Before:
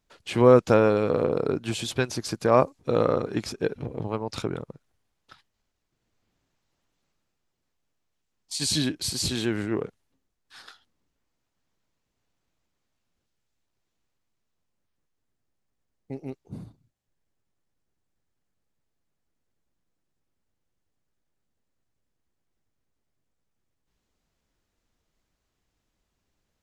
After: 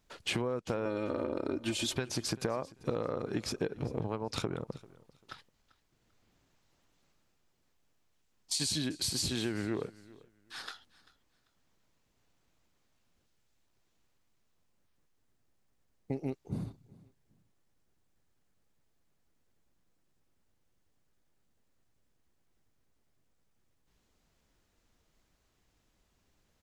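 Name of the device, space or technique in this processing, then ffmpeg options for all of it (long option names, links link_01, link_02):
serial compression, leveller first: -filter_complex "[0:a]asettb=1/sr,asplit=3[link_01][link_02][link_03];[link_01]atrim=end=0.854[link_04];[link_02]atrim=start=0.85:end=1.97,asetpts=PTS-STARTPTS,afade=type=in:duration=0.004:curve=qsin,afade=type=out:start_time=1.116:duration=0.004:curve=qsin,aecho=1:1:3.3:0.83,atrim=end_sample=49392[link_05];[link_03]atrim=start=1.966[link_06];[link_04][link_05]acrossfade=duration=0.004:curve1=hsin:curve2=qsin[link_07];[link_07][link_06]acrossfade=duration=0.004:curve1=qsin:curve2=hsin,acompressor=threshold=-23dB:ratio=2.5,acompressor=threshold=-34dB:ratio=10,aecho=1:1:392|784:0.0841|0.0194,volume=4dB"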